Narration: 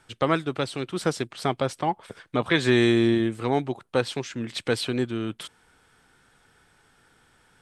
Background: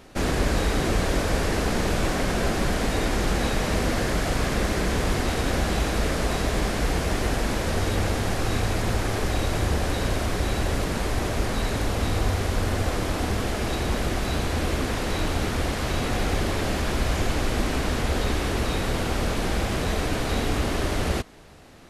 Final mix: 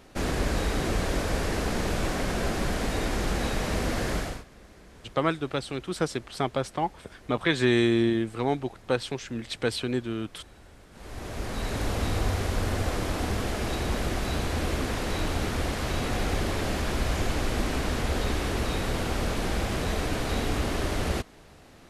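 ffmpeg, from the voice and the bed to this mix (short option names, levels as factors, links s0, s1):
-filter_complex "[0:a]adelay=4950,volume=0.75[s0];[1:a]volume=10,afade=t=out:st=4.16:d=0.28:silence=0.0707946,afade=t=in:st=10.91:d=0.98:silence=0.0630957[s1];[s0][s1]amix=inputs=2:normalize=0"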